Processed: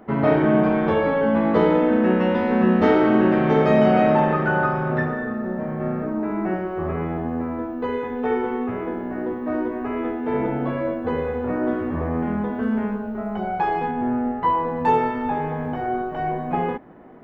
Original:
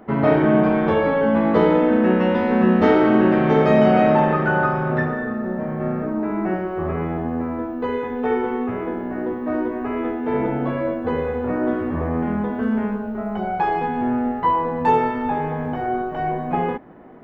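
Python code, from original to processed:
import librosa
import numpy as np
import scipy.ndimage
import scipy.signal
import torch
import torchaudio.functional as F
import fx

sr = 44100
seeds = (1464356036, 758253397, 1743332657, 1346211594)

y = fx.high_shelf(x, sr, hz=3500.0, db=-11.5, at=(13.91, 14.42))
y = y * 10.0 ** (-1.5 / 20.0)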